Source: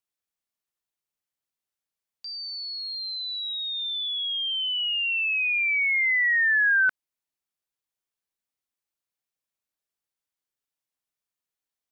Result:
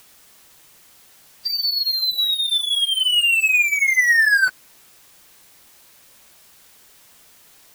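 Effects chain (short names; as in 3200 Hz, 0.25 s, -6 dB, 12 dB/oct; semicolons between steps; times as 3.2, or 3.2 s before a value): power-law curve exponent 0.5; plain phase-vocoder stretch 0.65×; gain +7 dB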